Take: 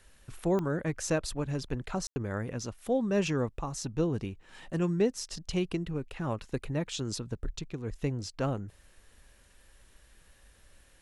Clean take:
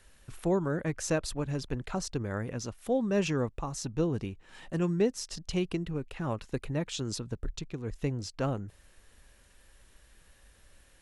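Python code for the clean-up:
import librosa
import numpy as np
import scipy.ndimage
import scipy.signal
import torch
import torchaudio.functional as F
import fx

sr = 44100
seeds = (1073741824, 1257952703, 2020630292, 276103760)

y = fx.fix_declick_ar(x, sr, threshold=10.0)
y = fx.fix_ambience(y, sr, seeds[0], print_start_s=9.22, print_end_s=9.72, start_s=2.07, end_s=2.16)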